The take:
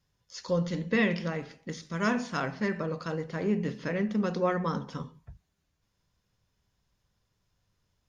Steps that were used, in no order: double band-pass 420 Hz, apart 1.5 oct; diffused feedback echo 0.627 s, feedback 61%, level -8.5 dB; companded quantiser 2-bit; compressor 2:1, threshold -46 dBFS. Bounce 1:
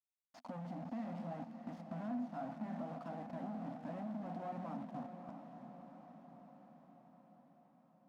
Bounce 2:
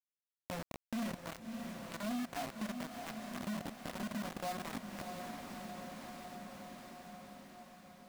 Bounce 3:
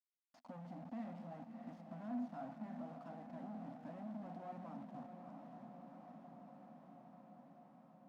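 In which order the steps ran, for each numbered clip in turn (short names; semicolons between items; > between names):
companded quantiser > double band-pass > compressor > diffused feedback echo; double band-pass > companded quantiser > diffused feedback echo > compressor; companded quantiser > diffused feedback echo > compressor > double band-pass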